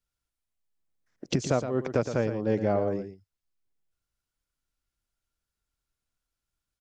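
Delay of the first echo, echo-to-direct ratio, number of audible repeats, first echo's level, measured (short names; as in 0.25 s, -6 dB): 0.116 s, -9.5 dB, 1, -9.5 dB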